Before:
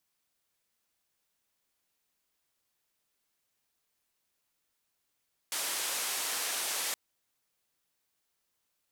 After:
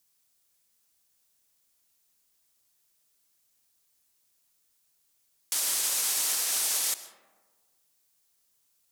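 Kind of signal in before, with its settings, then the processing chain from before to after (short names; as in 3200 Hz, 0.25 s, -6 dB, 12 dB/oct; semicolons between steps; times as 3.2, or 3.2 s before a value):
noise band 430–12000 Hz, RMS -34 dBFS 1.42 s
tone controls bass +3 dB, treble +10 dB; limiter -18 dBFS; digital reverb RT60 1.5 s, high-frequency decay 0.35×, pre-delay 80 ms, DRR 13 dB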